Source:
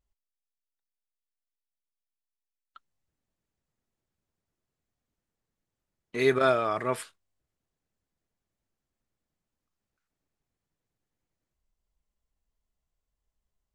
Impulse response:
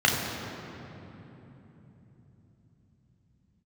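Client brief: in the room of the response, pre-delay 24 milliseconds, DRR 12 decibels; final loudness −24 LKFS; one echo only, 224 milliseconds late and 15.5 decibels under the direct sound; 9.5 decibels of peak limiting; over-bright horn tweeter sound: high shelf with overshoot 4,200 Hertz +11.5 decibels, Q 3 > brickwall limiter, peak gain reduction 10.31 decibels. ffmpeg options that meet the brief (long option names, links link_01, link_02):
-filter_complex "[0:a]alimiter=limit=-20dB:level=0:latency=1,aecho=1:1:224:0.168,asplit=2[link_01][link_02];[1:a]atrim=start_sample=2205,adelay=24[link_03];[link_02][link_03]afir=irnorm=-1:irlink=0,volume=-29dB[link_04];[link_01][link_04]amix=inputs=2:normalize=0,highshelf=frequency=4200:width_type=q:width=3:gain=11.5,volume=13.5dB,alimiter=limit=-12dB:level=0:latency=1"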